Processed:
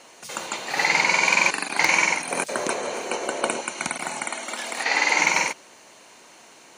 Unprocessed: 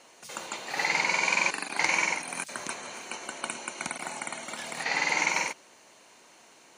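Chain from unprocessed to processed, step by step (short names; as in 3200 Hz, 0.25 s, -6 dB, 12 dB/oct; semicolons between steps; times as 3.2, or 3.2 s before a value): wavefolder -12.5 dBFS; 2.31–3.61 bell 480 Hz +13 dB 1.3 oct; 4.27–5.19 HPF 240 Hz 24 dB/oct; gain +6.5 dB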